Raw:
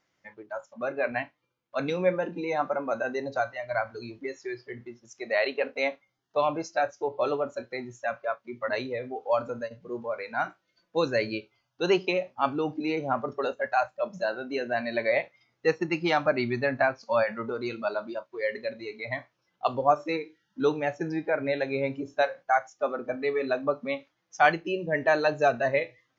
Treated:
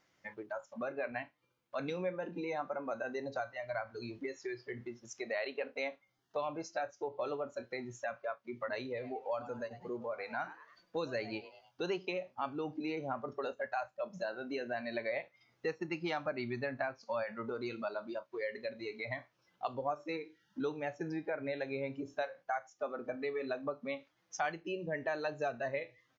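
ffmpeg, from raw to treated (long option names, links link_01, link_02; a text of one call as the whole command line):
ffmpeg -i in.wav -filter_complex "[0:a]asplit=3[link_01][link_02][link_03];[link_01]afade=type=out:start_time=8.95:duration=0.02[link_04];[link_02]asplit=4[link_05][link_06][link_07][link_08];[link_06]adelay=102,afreqshift=140,volume=-17dB[link_09];[link_07]adelay=204,afreqshift=280,volume=-26.4dB[link_10];[link_08]adelay=306,afreqshift=420,volume=-35.7dB[link_11];[link_05][link_09][link_10][link_11]amix=inputs=4:normalize=0,afade=type=in:start_time=8.95:duration=0.02,afade=type=out:start_time=11.91:duration=0.02[link_12];[link_03]afade=type=in:start_time=11.91:duration=0.02[link_13];[link_04][link_12][link_13]amix=inputs=3:normalize=0,acompressor=threshold=-42dB:ratio=2.5,volume=1.5dB" out.wav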